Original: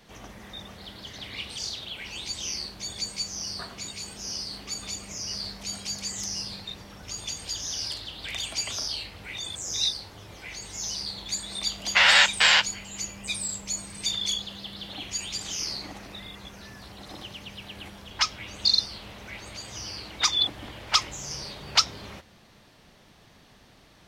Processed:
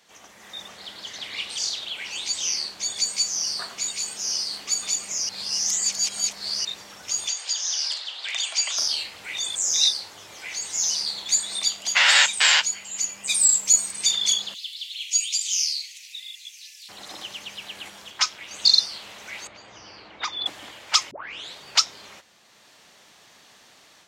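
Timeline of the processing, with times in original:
0.68–2.97 s: treble shelf 11 kHz -7 dB
5.29–6.65 s: reverse
7.28–8.78 s: band-pass 610–6400 Hz
13.29–13.91 s: treble shelf 8.7 kHz +10.5 dB
14.54–16.89 s: steep high-pass 2.3 kHz 48 dB/octave
18.11–18.51 s: AM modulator 250 Hz, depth 70%
19.47–20.46 s: tape spacing loss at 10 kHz 36 dB
21.11 s: tape start 0.45 s
whole clip: high-pass 850 Hz 6 dB/octave; peaking EQ 7.2 kHz +7 dB 0.54 oct; level rider gain up to 7 dB; trim -1.5 dB

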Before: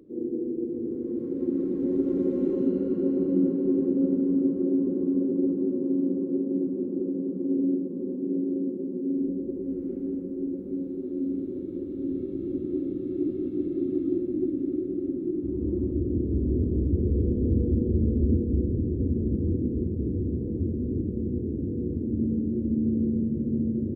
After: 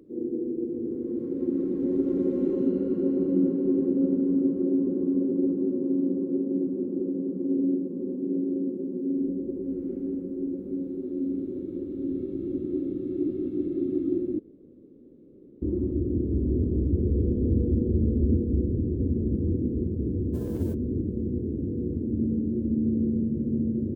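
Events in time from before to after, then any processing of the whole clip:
14.39–15.62 s: room tone
20.33–20.73 s: formants flattened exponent 0.6

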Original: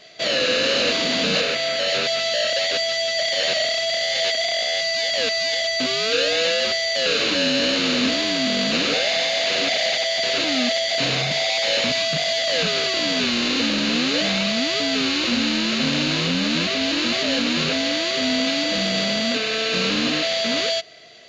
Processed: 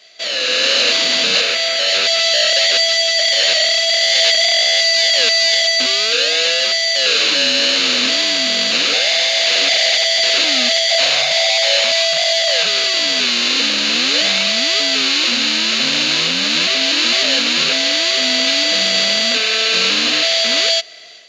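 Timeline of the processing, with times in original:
10.89–12.66 s: resonant low shelf 480 Hz -6 dB, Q 3
whole clip: level rider; high-pass 520 Hz 6 dB/octave; treble shelf 2.1 kHz +7.5 dB; trim -4 dB

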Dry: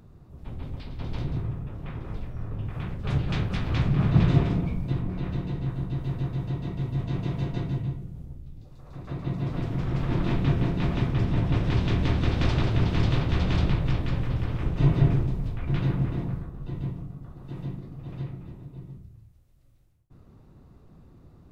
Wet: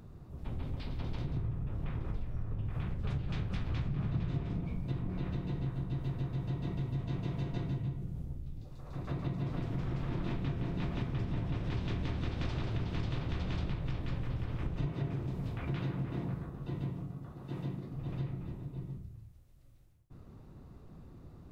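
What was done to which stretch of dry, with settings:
1.36–4.64 s: bass shelf 120 Hz +6 dB
14.86–17.93 s: high-pass 140 Hz 6 dB/octave
whole clip: compression, threshold -32 dBFS

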